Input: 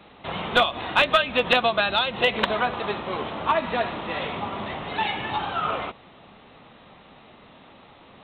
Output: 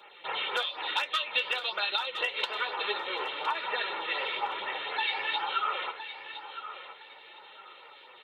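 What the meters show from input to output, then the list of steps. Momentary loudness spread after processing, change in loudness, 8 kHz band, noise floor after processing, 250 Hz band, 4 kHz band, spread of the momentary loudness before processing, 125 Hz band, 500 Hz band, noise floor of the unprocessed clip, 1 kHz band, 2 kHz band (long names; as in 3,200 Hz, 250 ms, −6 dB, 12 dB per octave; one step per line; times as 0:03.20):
20 LU, −7.0 dB, can't be measured, −52 dBFS, −20.0 dB, −4.0 dB, 11 LU, below −30 dB, −13.5 dB, −50 dBFS, −7.5 dB, −6.0 dB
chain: high-pass filter 440 Hz 12 dB per octave
tilt shelving filter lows −6.5 dB, about 1,100 Hz
comb filter 2.2 ms, depth 71%
dynamic equaliser 5,100 Hz, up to +6 dB, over −38 dBFS, Q 1.8
downward compressor 6 to 1, threshold −23 dBFS, peak gain reduction 13 dB
flanger 0.53 Hz, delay 4.6 ms, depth 5.6 ms, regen +53%
auto-filter notch sine 4.1 Hz 730–4,200 Hz
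flanger 1.1 Hz, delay 1.8 ms, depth 9.4 ms, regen −84%
on a send: repeating echo 1,013 ms, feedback 26%, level −11.5 dB
on the sum: level +6.5 dB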